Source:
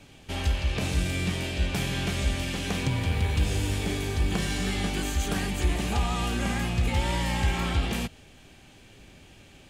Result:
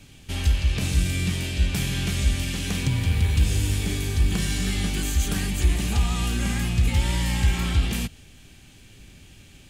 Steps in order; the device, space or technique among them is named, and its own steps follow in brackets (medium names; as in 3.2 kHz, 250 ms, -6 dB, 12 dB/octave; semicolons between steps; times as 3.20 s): smiley-face EQ (bass shelf 190 Hz +4.5 dB; peaking EQ 660 Hz -7.5 dB 1.9 oct; treble shelf 6.3 kHz +6.5 dB); trim +1.5 dB